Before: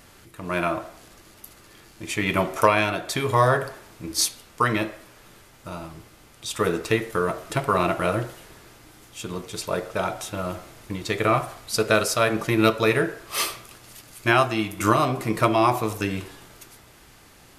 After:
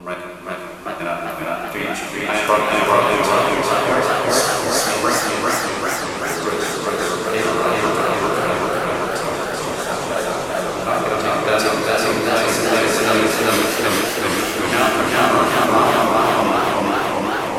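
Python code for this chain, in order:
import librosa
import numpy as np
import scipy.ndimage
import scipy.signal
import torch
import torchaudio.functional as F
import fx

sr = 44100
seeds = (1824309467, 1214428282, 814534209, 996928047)

p1 = fx.block_reorder(x, sr, ms=143.0, group=4)
p2 = fx.peak_eq(p1, sr, hz=120.0, db=-13.5, octaves=0.77)
p3 = p2 + fx.echo_single(p2, sr, ms=411, db=-3.0, dry=0)
p4 = fx.rev_gated(p3, sr, seeds[0], gate_ms=480, shape='falling', drr_db=-2.0)
p5 = fx.echo_warbled(p4, sr, ms=387, feedback_pct=80, rate_hz=2.8, cents=133, wet_db=-4.0)
y = p5 * librosa.db_to_amplitude(-1.0)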